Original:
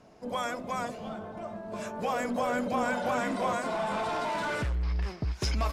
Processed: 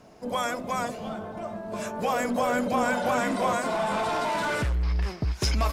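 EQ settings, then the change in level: high shelf 9700 Hz +8 dB; +4.0 dB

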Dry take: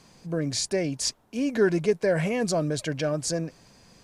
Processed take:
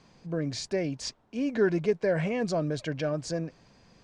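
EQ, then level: air absorption 110 m; -2.5 dB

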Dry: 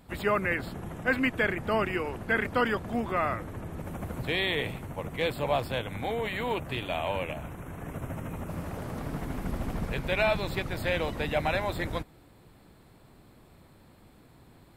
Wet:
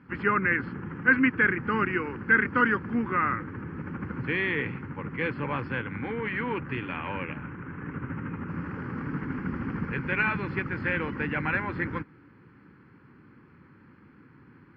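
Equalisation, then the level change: air absorption 220 m; speaker cabinet 130–5000 Hz, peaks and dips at 280 Hz +3 dB, 1500 Hz +5 dB, 4100 Hz +5 dB; fixed phaser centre 1600 Hz, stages 4; +5.5 dB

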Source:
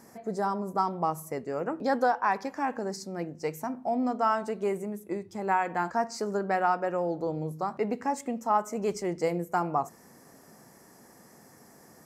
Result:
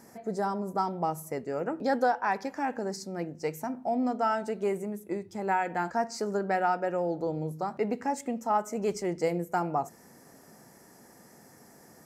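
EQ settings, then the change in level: notch 1100 Hz, Q 12; dynamic EQ 1100 Hz, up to -4 dB, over -42 dBFS, Q 3.2; 0.0 dB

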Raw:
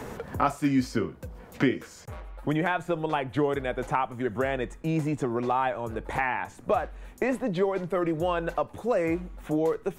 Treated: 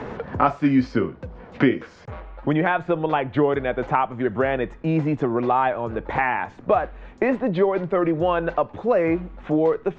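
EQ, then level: Gaussian blur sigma 2.2 samples; low shelf 83 Hz -5.5 dB; +6.5 dB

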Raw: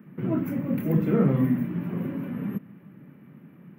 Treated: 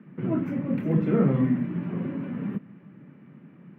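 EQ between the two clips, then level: HPF 88 Hz; LPF 4600 Hz 12 dB/oct; 0.0 dB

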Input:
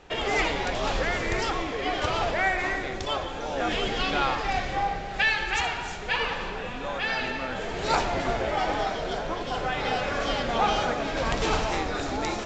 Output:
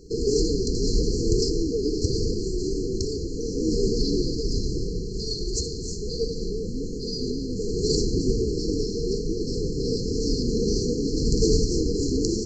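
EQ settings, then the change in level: brick-wall FIR band-stop 490–4100 Hz; +8.5 dB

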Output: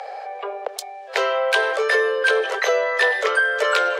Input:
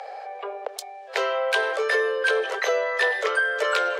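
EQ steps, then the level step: HPF 260 Hz 12 dB/oct; +4.0 dB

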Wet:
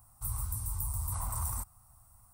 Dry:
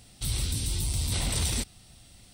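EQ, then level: EQ curve 110 Hz 0 dB, 160 Hz -9 dB, 420 Hz -18 dB, 1100 Hz +13 dB, 1700 Hz -10 dB, 3400 Hz -28 dB, 13000 Hz +11 dB; -6.0 dB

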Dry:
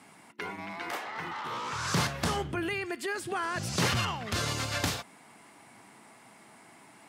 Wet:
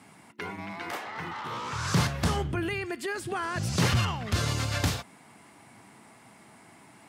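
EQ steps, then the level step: low shelf 140 Hz +11.5 dB; 0.0 dB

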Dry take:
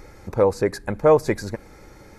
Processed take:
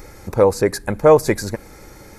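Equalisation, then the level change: high shelf 7300 Hz +11.5 dB; +4.0 dB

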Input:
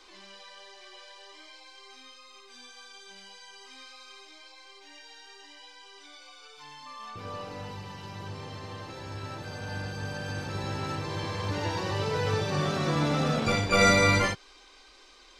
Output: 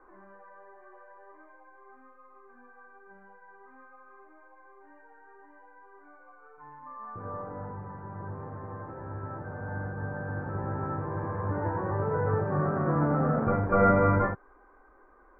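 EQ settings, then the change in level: steep low-pass 1600 Hz 48 dB/oct; +1.0 dB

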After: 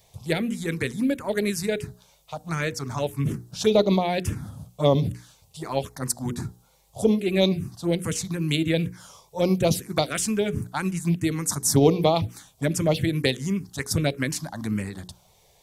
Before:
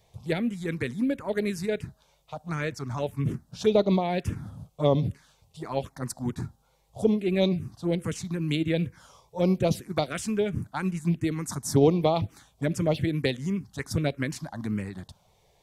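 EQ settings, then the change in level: high shelf 4600 Hz +10 dB; notches 60/120/180/240/300/360/420/480 Hz; +3.0 dB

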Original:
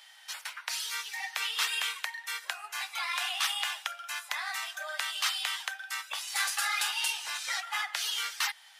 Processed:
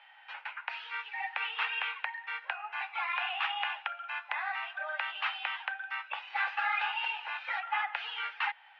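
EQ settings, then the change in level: air absorption 140 m; speaker cabinet 380–2800 Hz, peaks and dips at 510 Hz +4 dB, 840 Hz +10 dB, 1500 Hz +4 dB, 2600 Hz +7 dB; -1.5 dB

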